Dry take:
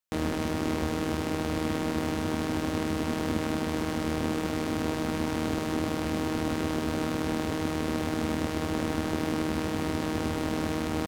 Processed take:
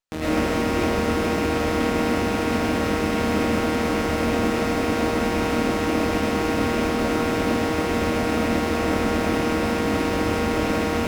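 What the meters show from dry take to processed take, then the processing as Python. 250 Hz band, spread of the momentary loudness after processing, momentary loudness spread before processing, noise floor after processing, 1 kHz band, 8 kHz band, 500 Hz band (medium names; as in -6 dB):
+6.0 dB, 1 LU, 1 LU, -24 dBFS, +9.0 dB, +6.0 dB, +9.5 dB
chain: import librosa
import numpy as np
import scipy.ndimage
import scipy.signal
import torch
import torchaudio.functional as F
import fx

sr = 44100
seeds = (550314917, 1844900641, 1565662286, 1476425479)

y = fx.rattle_buzz(x, sr, strikes_db=-31.0, level_db=-31.0)
y = fx.rev_freeverb(y, sr, rt60_s=0.48, hf_ratio=0.35, predelay_ms=70, drr_db=-9.0)
y = fx.running_max(y, sr, window=3)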